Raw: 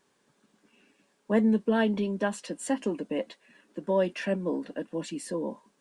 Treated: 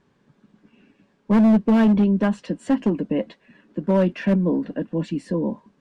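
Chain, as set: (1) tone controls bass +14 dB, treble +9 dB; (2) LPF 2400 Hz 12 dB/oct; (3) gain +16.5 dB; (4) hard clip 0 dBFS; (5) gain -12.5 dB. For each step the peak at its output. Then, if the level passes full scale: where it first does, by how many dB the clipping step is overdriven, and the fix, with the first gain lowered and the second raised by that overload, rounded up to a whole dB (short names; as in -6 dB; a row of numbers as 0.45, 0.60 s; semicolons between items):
-8.0, -8.0, +8.5, 0.0, -12.5 dBFS; step 3, 8.5 dB; step 3 +7.5 dB, step 5 -3.5 dB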